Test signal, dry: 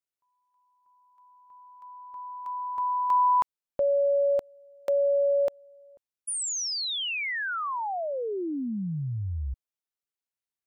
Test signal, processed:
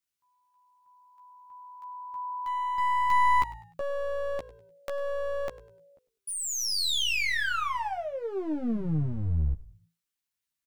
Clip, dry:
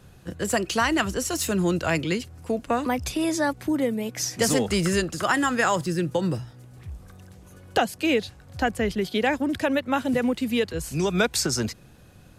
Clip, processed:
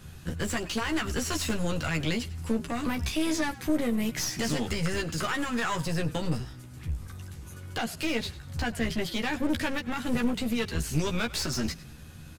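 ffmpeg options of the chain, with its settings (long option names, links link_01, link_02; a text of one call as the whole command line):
ffmpeg -i in.wav -filter_complex "[0:a]acrossover=split=4900[link_01][link_02];[link_02]acompressor=threshold=-40dB:ratio=4:attack=1:release=60[link_03];[link_01][link_03]amix=inputs=2:normalize=0,equalizer=frequency=560:width=0.93:gain=-9.5,alimiter=limit=-23.5dB:level=0:latency=1:release=199,aeval=exprs='clip(val(0),-1,0.0119)':channel_layout=same,asplit=2[link_04][link_05];[link_05]adelay=13,volume=-4dB[link_06];[link_04][link_06]amix=inputs=2:normalize=0,asplit=4[link_07][link_08][link_09][link_10];[link_08]adelay=100,afreqshift=-56,volume=-18dB[link_11];[link_09]adelay=200,afreqshift=-112,volume=-27.4dB[link_12];[link_10]adelay=300,afreqshift=-168,volume=-36.7dB[link_13];[link_07][link_11][link_12][link_13]amix=inputs=4:normalize=0,volume=4.5dB" out.wav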